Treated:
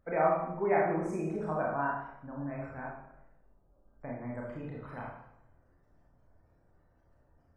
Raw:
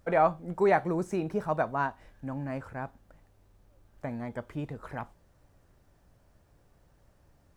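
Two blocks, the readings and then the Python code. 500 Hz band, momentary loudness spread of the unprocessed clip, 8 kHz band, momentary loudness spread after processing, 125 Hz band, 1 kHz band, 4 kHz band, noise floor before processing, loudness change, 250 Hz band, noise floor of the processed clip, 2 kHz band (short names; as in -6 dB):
-2.5 dB, 16 LU, n/a, 16 LU, -3.5 dB, -3.0 dB, under -10 dB, -65 dBFS, -2.5 dB, -3.0 dB, -68 dBFS, -2.5 dB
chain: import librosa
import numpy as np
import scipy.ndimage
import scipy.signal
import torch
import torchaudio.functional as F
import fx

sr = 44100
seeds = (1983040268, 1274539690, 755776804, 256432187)

y = fx.spec_gate(x, sr, threshold_db=-30, keep='strong')
y = fx.rev_schroeder(y, sr, rt60_s=0.78, comb_ms=25, drr_db=-4.0)
y = F.gain(torch.from_numpy(y), -8.0).numpy()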